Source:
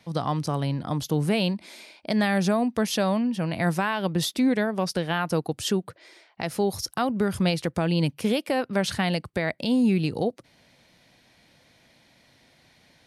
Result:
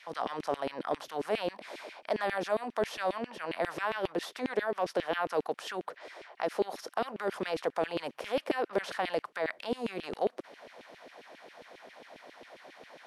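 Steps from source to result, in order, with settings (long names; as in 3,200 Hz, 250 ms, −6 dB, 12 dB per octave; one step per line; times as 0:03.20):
compressor on every frequency bin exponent 0.6
high-shelf EQ 2,200 Hz −12 dB
auto-filter high-pass saw down 7.4 Hz 320–2,900 Hz
level −8.5 dB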